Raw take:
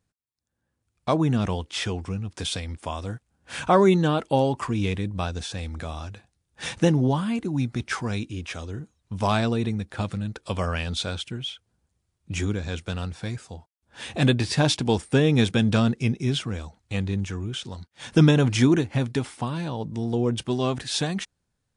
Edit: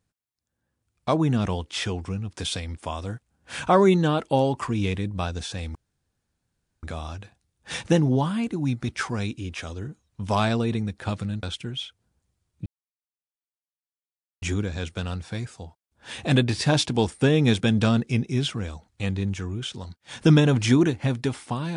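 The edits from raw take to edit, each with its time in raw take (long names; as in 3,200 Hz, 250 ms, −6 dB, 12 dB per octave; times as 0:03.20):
0:05.75: splice in room tone 1.08 s
0:10.35–0:11.10: remove
0:12.33: splice in silence 1.76 s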